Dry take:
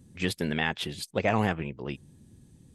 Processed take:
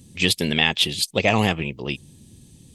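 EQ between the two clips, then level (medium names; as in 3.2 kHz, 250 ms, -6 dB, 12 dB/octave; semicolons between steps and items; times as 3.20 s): resonant high shelf 2.2 kHz +7.5 dB, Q 1.5; band-stop 1.5 kHz, Q 11; +6.0 dB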